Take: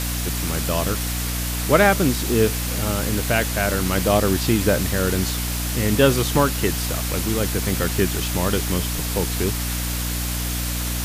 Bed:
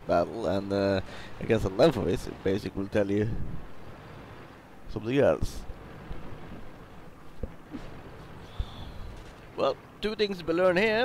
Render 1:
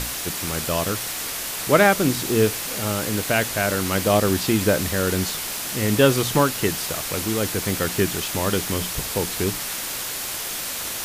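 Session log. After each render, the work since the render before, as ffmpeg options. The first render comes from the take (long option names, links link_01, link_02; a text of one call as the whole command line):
ffmpeg -i in.wav -af "bandreject=frequency=60:width_type=h:width=6,bandreject=frequency=120:width_type=h:width=6,bandreject=frequency=180:width_type=h:width=6,bandreject=frequency=240:width_type=h:width=6,bandreject=frequency=300:width_type=h:width=6" out.wav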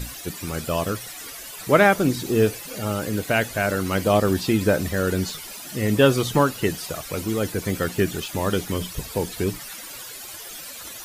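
ffmpeg -i in.wav -af "afftdn=noise_reduction=14:noise_floor=-30" out.wav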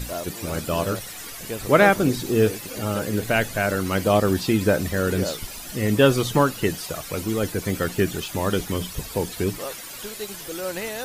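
ffmpeg -i in.wav -i bed.wav -filter_complex "[1:a]volume=-7dB[link_01];[0:a][link_01]amix=inputs=2:normalize=0" out.wav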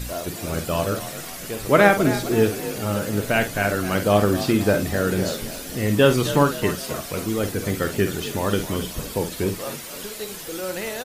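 ffmpeg -i in.wav -filter_complex "[0:a]asplit=2[link_01][link_02];[link_02]adelay=49,volume=-9dB[link_03];[link_01][link_03]amix=inputs=2:normalize=0,asplit=6[link_04][link_05][link_06][link_07][link_08][link_09];[link_05]adelay=261,afreqshift=39,volume=-13dB[link_10];[link_06]adelay=522,afreqshift=78,volume=-19.6dB[link_11];[link_07]adelay=783,afreqshift=117,volume=-26.1dB[link_12];[link_08]adelay=1044,afreqshift=156,volume=-32.7dB[link_13];[link_09]adelay=1305,afreqshift=195,volume=-39.2dB[link_14];[link_04][link_10][link_11][link_12][link_13][link_14]amix=inputs=6:normalize=0" out.wav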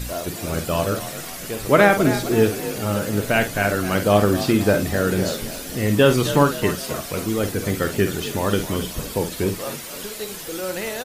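ffmpeg -i in.wav -af "volume=1.5dB,alimiter=limit=-3dB:level=0:latency=1" out.wav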